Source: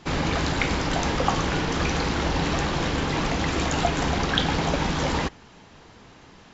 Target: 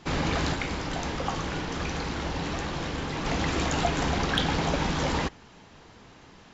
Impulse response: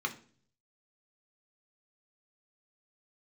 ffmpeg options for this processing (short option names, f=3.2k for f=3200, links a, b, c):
-filter_complex "[0:a]acontrast=76,asplit=3[a][b][c];[a]afade=t=out:st=0.54:d=0.02[d];[b]flanger=delay=9.9:depth=3:regen=-80:speed=1.2:shape=sinusoidal,afade=t=in:st=0.54:d=0.02,afade=t=out:st=3.25:d=0.02[e];[c]afade=t=in:st=3.25:d=0.02[f];[d][e][f]amix=inputs=3:normalize=0,volume=-9dB"